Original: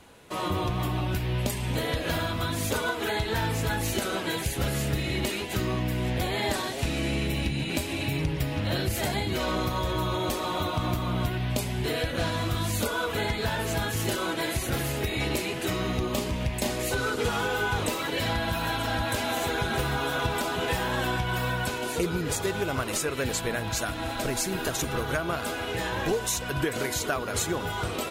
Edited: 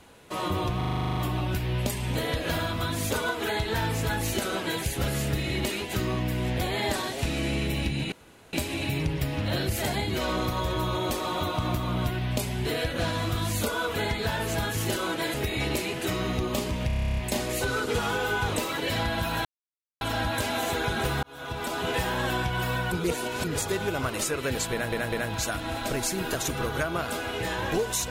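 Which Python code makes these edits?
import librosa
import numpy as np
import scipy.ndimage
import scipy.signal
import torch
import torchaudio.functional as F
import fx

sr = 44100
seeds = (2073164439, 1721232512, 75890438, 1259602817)

y = fx.edit(x, sr, fx.stutter(start_s=0.77, slice_s=0.04, count=11),
    fx.insert_room_tone(at_s=7.72, length_s=0.41),
    fx.cut(start_s=14.53, length_s=0.41),
    fx.stutter(start_s=16.47, slice_s=0.03, count=11),
    fx.insert_silence(at_s=18.75, length_s=0.56),
    fx.fade_in_span(start_s=19.97, length_s=0.62),
    fx.reverse_span(start_s=21.66, length_s=0.52),
    fx.stutter(start_s=23.46, slice_s=0.2, count=3), tone=tone)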